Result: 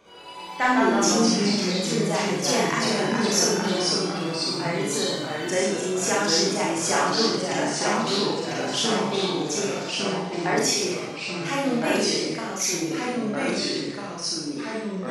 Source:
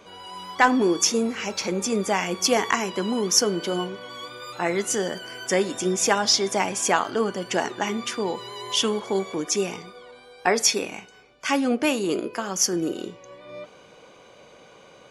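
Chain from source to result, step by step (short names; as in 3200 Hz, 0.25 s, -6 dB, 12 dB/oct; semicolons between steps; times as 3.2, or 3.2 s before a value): Schroeder reverb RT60 0.63 s, combs from 27 ms, DRR -4 dB; echoes that change speed 80 ms, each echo -2 st, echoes 3; gain -7.5 dB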